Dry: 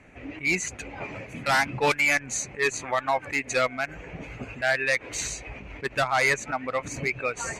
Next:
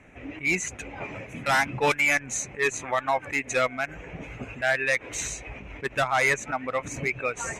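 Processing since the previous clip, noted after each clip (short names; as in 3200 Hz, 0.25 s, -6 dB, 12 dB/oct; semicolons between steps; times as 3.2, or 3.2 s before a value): notch 4500 Hz, Q 5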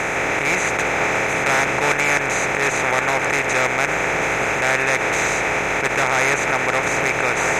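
per-bin compression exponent 0.2; gain -3 dB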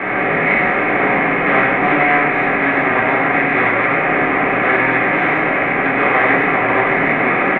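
echo 98 ms -4.5 dB; shoebox room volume 490 m³, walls furnished, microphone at 4.4 m; mistuned SSB -140 Hz 270–3000 Hz; gain -3.5 dB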